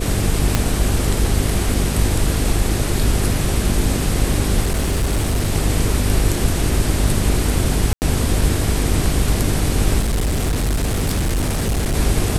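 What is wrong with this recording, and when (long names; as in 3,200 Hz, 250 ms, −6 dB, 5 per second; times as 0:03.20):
mains buzz 50 Hz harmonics 9 −22 dBFS
0:00.55: click −1 dBFS
0:04.60–0:05.50: clipping −14 dBFS
0:07.93–0:08.02: drop-out 89 ms
0:09.99–0:11.95: clipping −15.5 dBFS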